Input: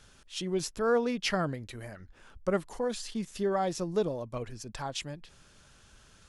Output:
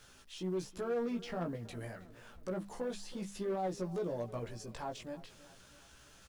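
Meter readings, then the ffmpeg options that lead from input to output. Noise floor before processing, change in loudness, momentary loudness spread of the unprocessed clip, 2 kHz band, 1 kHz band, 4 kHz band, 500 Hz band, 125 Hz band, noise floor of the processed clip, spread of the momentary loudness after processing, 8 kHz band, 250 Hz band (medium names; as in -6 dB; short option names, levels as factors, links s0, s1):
-59 dBFS, -7.5 dB, 15 LU, -11.5 dB, -8.0 dB, -12.0 dB, -7.0 dB, -5.0 dB, -60 dBFS, 20 LU, -10.5 dB, -5.5 dB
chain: -filter_complex "[0:a]deesser=0.9,lowshelf=f=260:g=-4,bandreject=f=50:t=h:w=6,bandreject=f=100:t=h:w=6,bandreject=f=150:t=h:w=6,bandreject=f=200:t=h:w=6,acrossover=split=1000[s0][s1];[s1]acompressor=threshold=0.00398:ratio=6[s2];[s0][s2]amix=inputs=2:normalize=0,alimiter=level_in=1.58:limit=0.0631:level=0:latency=1:release=31,volume=0.631,asplit=2[s3][s4];[s4]asoftclip=type=tanh:threshold=0.0126,volume=0.562[s5];[s3][s5]amix=inputs=2:normalize=0,acrusher=bits=10:mix=0:aa=0.000001,flanger=delay=15.5:depth=2.1:speed=0.32,volume=29.9,asoftclip=hard,volume=0.0335,asplit=2[s6][s7];[s7]adelay=321,lowpass=f=3800:p=1,volume=0.126,asplit=2[s8][s9];[s9]adelay=321,lowpass=f=3800:p=1,volume=0.52,asplit=2[s10][s11];[s11]adelay=321,lowpass=f=3800:p=1,volume=0.52,asplit=2[s12][s13];[s13]adelay=321,lowpass=f=3800:p=1,volume=0.52[s14];[s6][s8][s10][s12][s14]amix=inputs=5:normalize=0,volume=0.891"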